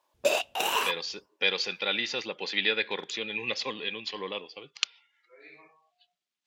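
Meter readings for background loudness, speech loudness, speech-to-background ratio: -28.0 LUFS, -30.5 LUFS, -2.5 dB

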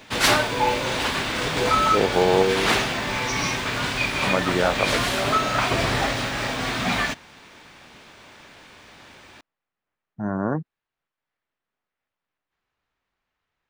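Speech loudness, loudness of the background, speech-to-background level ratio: -24.5 LUFS, -22.5 LUFS, -2.0 dB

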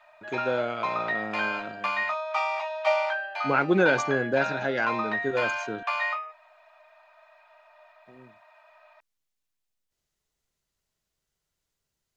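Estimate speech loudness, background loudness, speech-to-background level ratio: -28.0 LUFS, -29.5 LUFS, 1.5 dB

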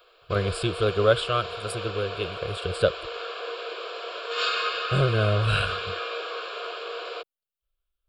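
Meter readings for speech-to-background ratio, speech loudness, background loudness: 6.0 dB, -26.0 LUFS, -32.0 LUFS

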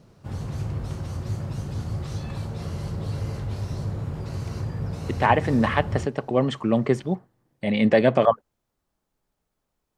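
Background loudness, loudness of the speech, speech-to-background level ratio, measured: -31.5 LUFS, -22.5 LUFS, 9.0 dB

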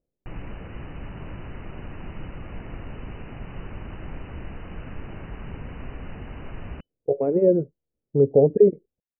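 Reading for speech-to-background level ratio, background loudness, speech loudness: 19.5 dB, -39.5 LUFS, -20.0 LUFS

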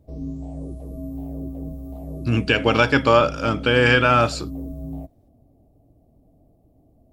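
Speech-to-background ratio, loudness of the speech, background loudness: 15.5 dB, -18.0 LUFS, -33.5 LUFS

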